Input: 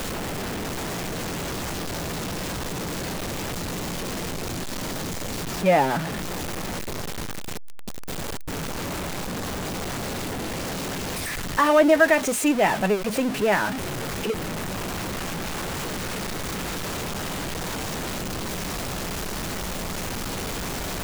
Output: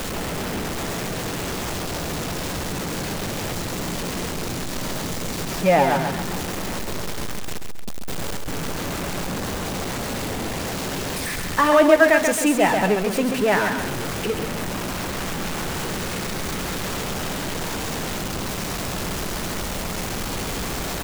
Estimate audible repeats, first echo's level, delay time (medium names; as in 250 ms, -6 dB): 3, -6.0 dB, 135 ms